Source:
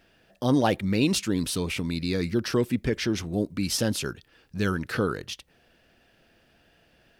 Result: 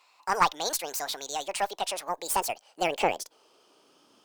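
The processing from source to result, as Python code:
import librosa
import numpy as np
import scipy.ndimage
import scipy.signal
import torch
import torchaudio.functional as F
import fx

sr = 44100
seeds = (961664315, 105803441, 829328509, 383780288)

y = fx.speed_glide(x, sr, from_pct=152, to_pct=187)
y = fx.filter_sweep_highpass(y, sr, from_hz=1000.0, to_hz=140.0, start_s=2.06, end_s=5.04, q=1.8)
y = fx.cheby_harmonics(y, sr, harmonics=(4,), levels_db=(-20,), full_scale_db=-7.0)
y = y * librosa.db_to_amplitude(-1.0)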